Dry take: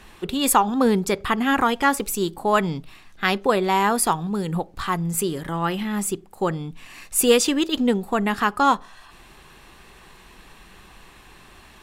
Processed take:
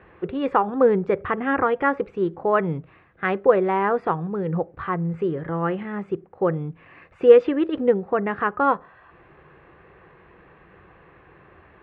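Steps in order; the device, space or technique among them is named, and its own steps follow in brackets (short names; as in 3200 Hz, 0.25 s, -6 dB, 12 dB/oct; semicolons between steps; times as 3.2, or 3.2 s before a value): bass cabinet (speaker cabinet 74–2000 Hz, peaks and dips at 89 Hz +5 dB, 150 Hz +4 dB, 230 Hz -8 dB, 340 Hz +3 dB, 500 Hz +8 dB, 900 Hz -4 dB); gain -1 dB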